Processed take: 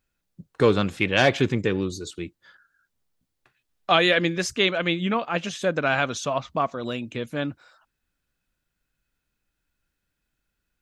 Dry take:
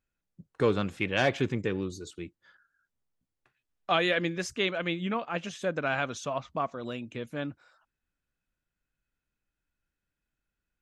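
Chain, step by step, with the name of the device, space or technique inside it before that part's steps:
presence and air boost (parametric band 4,100 Hz +3 dB 0.77 octaves; high-shelf EQ 9,500 Hz +3.5 dB)
level +6.5 dB

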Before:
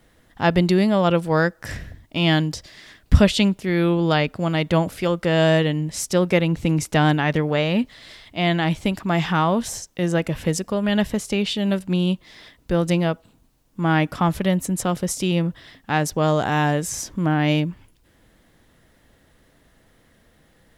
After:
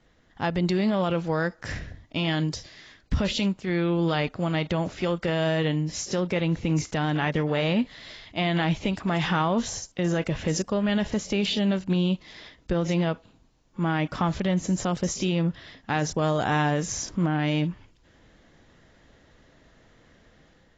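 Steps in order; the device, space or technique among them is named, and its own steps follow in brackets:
low-bitrate web radio (automatic gain control gain up to 5.5 dB; brickwall limiter −9.5 dBFS, peak gain reduction 8 dB; level −5.5 dB; AAC 24 kbit/s 16,000 Hz)

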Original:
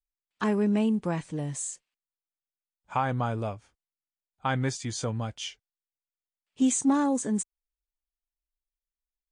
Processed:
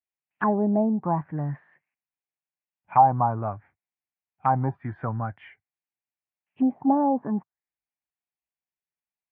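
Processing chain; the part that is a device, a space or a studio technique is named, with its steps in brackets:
envelope filter bass rig (envelope-controlled low-pass 700–2,700 Hz down, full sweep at −21.5 dBFS; loudspeaker in its box 79–2,000 Hz, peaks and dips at 100 Hz +3 dB, 150 Hz +5 dB, 480 Hz −7 dB, 770 Hz +5 dB, 1,300 Hz −6 dB)

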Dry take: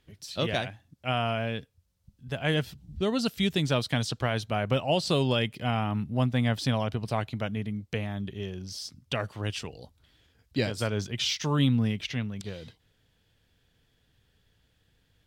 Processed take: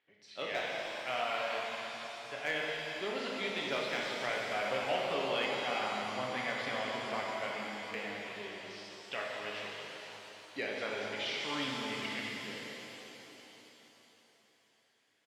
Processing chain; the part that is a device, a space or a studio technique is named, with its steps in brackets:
megaphone (band-pass filter 450–3,100 Hz; parametric band 2,100 Hz +7.5 dB 0.45 octaves; hard clipping −18.5 dBFS, distortion −23 dB; double-tracking delay 38 ms −12 dB)
0:04.23–0:05.32: Butterworth low-pass 3,300 Hz
reverb with rising layers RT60 3.8 s, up +7 semitones, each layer −8 dB, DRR −3 dB
level −8.5 dB

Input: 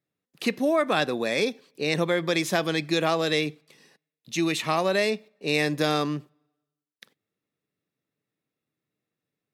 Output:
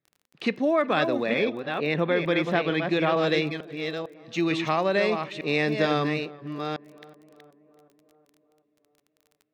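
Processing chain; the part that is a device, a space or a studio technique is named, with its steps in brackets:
delay that plays each chunk backwards 451 ms, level −6 dB
0:01.26–0:03.17: flat-topped bell 7,300 Hz −9.5 dB
tape delay 372 ms, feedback 67%, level −20 dB, low-pass 1,500 Hz
lo-fi chain (low-pass filter 3,500 Hz 12 dB per octave; tape wow and flutter 24 cents; surface crackle 23 per second −41 dBFS)

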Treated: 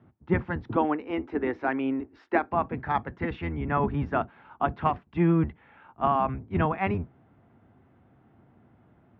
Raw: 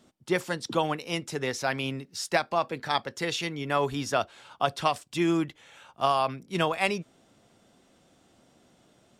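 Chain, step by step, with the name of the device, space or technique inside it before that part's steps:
sub-octave bass pedal (sub-octave generator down 1 octave, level +4 dB; loudspeaker in its box 60–2,000 Hz, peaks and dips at 240 Hz +3 dB, 550 Hz −6 dB, 860 Hz +3 dB)
0:00.76–0:02.51: low shelf with overshoot 220 Hz −10 dB, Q 3

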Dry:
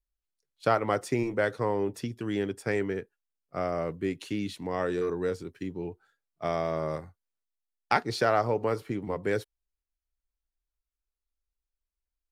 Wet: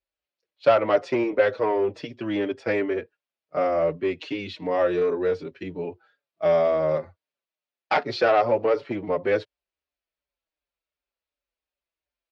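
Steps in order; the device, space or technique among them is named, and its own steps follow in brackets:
barber-pole flanger into a guitar amplifier (barber-pole flanger 5.4 ms −2.7 Hz; soft clipping −23 dBFS, distortion −15 dB; loudspeaker in its box 110–4,600 Hz, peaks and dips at 120 Hz −8 dB, 200 Hz −7 dB, 580 Hz +9 dB, 2,500 Hz +4 dB)
level +8 dB

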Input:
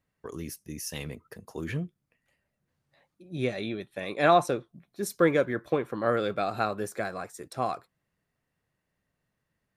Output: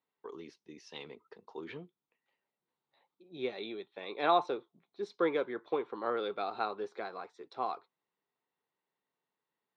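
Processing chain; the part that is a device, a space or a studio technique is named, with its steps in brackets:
phone earpiece (loudspeaker in its box 360–4,000 Hz, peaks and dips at 410 Hz +5 dB, 600 Hz −7 dB, 900 Hz +7 dB, 1,700 Hz −7 dB, 2,600 Hz −3 dB, 3,800 Hz +5 dB)
level −5.5 dB

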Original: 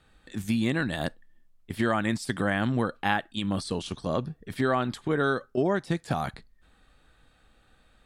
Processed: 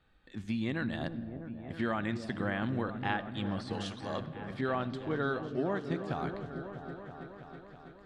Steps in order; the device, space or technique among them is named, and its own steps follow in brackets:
0:03.73–0:04.21: RIAA equalisation recording
compressed reverb return (on a send at −12 dB: convolution reverb RT60 1.4 s, pre-delay 53 ms + downward compressor, threshold −29 dBFS, peak gain reduction 8 dB)
on the sum: low-pass filter 4,300 Hz 12 dB per octave
echo whose low-pass opens from repeat to repeat 325 ms, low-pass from 400 Hz, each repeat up 1 octave, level −6 dB
level −7.5 dB

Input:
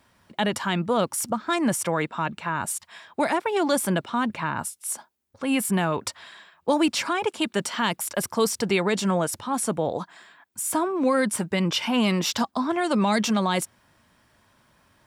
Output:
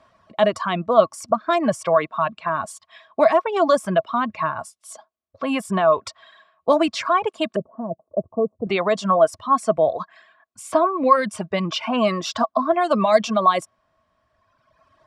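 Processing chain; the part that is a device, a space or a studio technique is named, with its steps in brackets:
reverb reduction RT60 1.7 s
0:07.56–0:08.67: inverse Chebyshev low-pass filter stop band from 2,000 Hz, stop band 60 dB
inside a cardboard box (low-pass filter 5,700 Hz 12 dB per octave; hollow resonant body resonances 650/1,100 Hz, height 17 dB, ringing for 45 ms)

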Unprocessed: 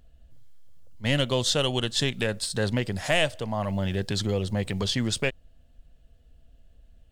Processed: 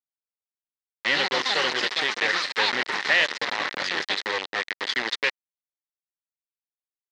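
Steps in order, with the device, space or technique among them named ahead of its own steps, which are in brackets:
Butterworth low-pass 10,000 Hz 96 dB per octave
parametric band 190 Hz −5.5 dB 0.45 octaves
0:01.12–0:02.05: bass and treble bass +2 dB, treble −8 dB
delay with pitch and tempo change per echo 399 ms, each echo +6 semitones, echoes 3
hand-held game console (bit reduction 4 bits; loudspeaker in its box 470–5,000 Hz, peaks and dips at 660 Hz −8 dB, 1,900 Hz +10 dB, 4,000 Hz +4 dB)

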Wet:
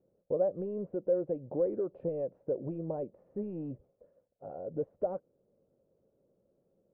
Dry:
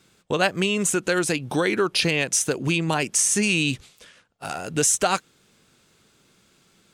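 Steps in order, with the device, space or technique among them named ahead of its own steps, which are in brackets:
overdriven synthesiser ladder filter (soft clipping −15.5 dBFS, distortion −15 dB; transistor ladder low-pass 590 Hz, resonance 75%)
level −2 dB

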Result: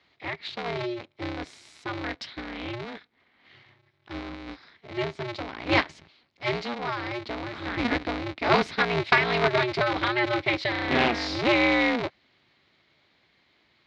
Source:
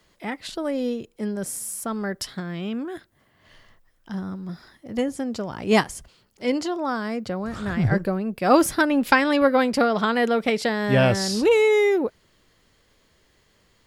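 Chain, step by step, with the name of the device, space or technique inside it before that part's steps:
ring modulator pedal into a guitar cabinet (ring modulator with a square carrier 120 Hz; loudspeaker in its box 95–4,600 Hz, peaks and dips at 120 Hz −6 dB, 190 Hz −5 dB, 490 Hz −5 dB, 2,200 Hz +8 dB, 3,900 Hz +7 dB)
level −4 dB

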